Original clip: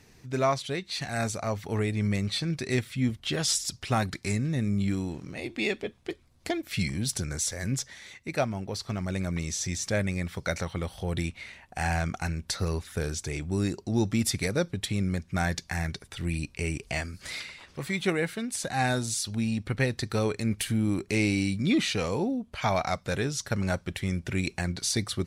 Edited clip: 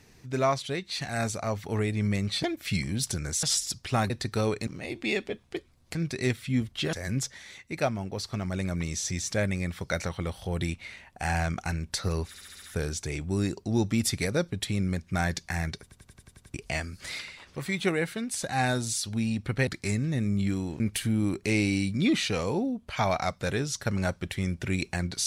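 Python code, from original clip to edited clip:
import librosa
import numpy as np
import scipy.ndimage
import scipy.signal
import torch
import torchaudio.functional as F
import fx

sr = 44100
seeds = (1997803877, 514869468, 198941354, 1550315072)

y = fx.edit(x, sr, fx.swap(start_s=2.43, length_s=0.98, other_s=6.49, other_length_s=1.0),
    fx.swap(start_s=4.08, length_s=1.13, other_s=19.88, other_length_s=0.57),
    fx.stutter(start_s=12.83, slice_s=0.07, count=6),
    fx.stutter_over(start_s=16.03, slice_s=0.09, count=8), tone=tone)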